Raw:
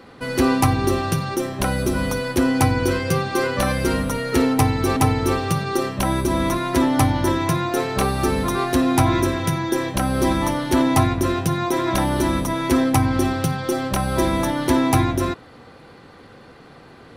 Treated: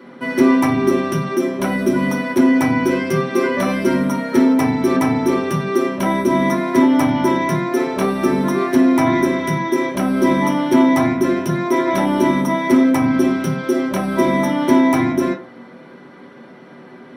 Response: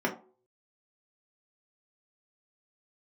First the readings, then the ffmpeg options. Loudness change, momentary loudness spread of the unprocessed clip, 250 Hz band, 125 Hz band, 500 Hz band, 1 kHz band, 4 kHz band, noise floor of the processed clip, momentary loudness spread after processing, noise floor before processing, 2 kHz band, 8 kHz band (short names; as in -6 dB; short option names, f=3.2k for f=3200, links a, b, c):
+3.5 dB, 5 LU, +6.0 dB, -3.5 dB, +4.5 dB, +1.5 dB, -3.0 dB, -41 dBFS, 6 LU, -45 dBFS, +3.0 dB, -5.0 dB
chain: -filter_complex "[0:a]highshelf=f=2.5k:g=8.5,acontrast=74[a];[1:a]atrim=start_sample=2205[b];[a][b]afir=irnorm=-1:irlink=0,volume=-15.5dB"